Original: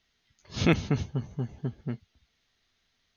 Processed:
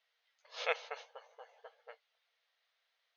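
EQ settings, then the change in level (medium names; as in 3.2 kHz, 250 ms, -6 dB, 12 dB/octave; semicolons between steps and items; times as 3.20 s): brick-wall FIR high-pass 450 Hz; distance through air 150 m; -3.5 dB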